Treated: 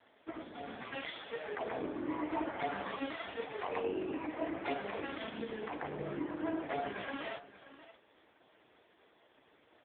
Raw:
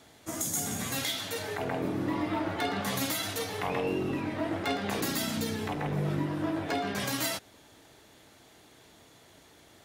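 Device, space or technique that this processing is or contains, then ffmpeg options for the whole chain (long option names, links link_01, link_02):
satellite phone: -af "highpass=310,lowpass=3200,aecho=1:1:580:0.158,volume=-1.5dB" -ar 8000 -c:a libopencore_amrnb -b:a 4750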